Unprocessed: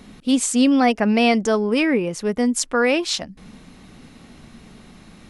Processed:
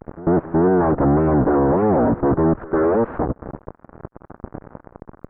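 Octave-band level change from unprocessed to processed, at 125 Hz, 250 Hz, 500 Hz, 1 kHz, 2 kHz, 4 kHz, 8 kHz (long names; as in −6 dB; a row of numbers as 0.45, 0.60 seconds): +13.0 dB, +0.5 dB, +3.5 dB, +2.5 dB, −9.0 dB, below −40 dB, below −40 dB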